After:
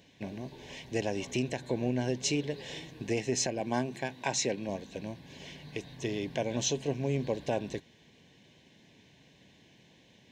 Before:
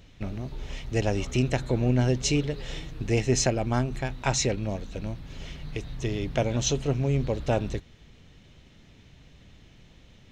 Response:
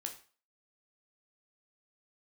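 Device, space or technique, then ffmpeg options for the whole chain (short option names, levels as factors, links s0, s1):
PA system with an anti-feedback notch: -filter_complex "[0:a]asettb=1/sr,asplit=3[s0][s1][s2];[s0]atrim=end=3.604[s3];[s1]atrim=start=3.6:end=4.69,asetpts=PTS-STARTPTS,afade=t=in:d=0.004:c=qsin,afade=t=out:st=1.086:d=0.004:c=qsin,highpass=130[s4];[s2]atrim=start=4.686[s5];[s3][s4]acrossfade=d=0.004:c1=hsin:c2=qsin[s6];[s6][s5]acrossfade=d=0.004:c1=qsin:c2=hsin,highpass=180,asuperstop=centerf=1300:order=8:qfactor=4,alimiter=limit=0.15:level=0:latency=1:release=213,volume=0.794"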